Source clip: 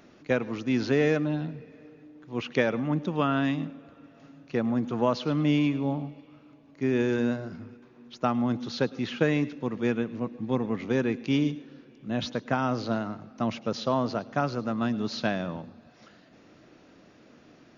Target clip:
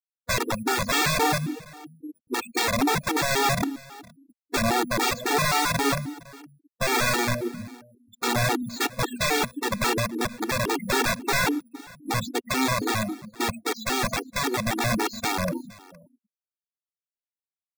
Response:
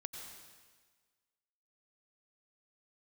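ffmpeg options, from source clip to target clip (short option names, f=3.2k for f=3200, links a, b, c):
-filter_complex "[0:a]aemphasis=mode=production:type=50fm,afftfilt=real='re*gte(hypot(re,im),0.0447)':imag='im*gte(hypot(re,im),0.0447)':win_size=1024:overlap=0.75,acrossover=split=4400[a][b];[b]acompressor=threshold=-46dB:ratio=4:attack=1:release=60[c];[a][c]amix=inputs=2:normalize=0,equalizer=f=380:t=o:w=1.9:g=15,asplit=2[d][e];[e]acompressor=threshold=-28dB:ratio=6,volume=-1dB[f];[d][f]amix=inputs=2:normalize=0,acrusher=samples=4:mix=1:aa=0.000001,aeval=exprs='(mod(4.22*val(0)+1,2)-1)/4.22':c=same,asuperstop=centerf=3000:order=20:qfactor=7.5,aecho=1:1:465:0.0794,afftfilt=real='re*gt(sin(2*PI*3.7*pts/sr)*(1-2*mod(floor(b*sr/1024/240),2)),0)':imag='im*gt(sin(2*PI*3.7*pts/sr)*(1-2*mod(floor(b*sr/1024/240),2)),0)':win_size=1024:overlap=0.75,volume=-2dB"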